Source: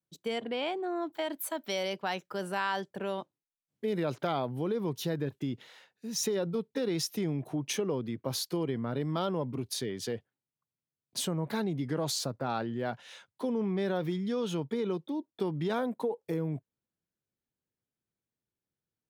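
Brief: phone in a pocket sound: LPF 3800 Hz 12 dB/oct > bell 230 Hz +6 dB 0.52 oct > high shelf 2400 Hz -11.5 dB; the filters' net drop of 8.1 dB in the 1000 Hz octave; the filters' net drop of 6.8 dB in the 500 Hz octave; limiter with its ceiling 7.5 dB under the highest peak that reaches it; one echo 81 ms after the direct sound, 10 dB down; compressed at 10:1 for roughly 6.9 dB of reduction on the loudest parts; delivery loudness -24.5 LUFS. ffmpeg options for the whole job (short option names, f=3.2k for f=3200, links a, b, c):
-af "equalizer=f=500:t=o:g=-7.5,equalizer=f=1k:t=o:g=-6,acompressor=threshold=-37dB:ratio=10,alimiter=level_in=9dB:limit=-24dB:level=0:latency=1,volume=-9dB,lowpass=3.8k,equalizer=f=230:t=o:w=0.52:g=6,highshelf=f=2.4k:g=-11.5,aecho=1:1:81:0.316,volume=16.5dB"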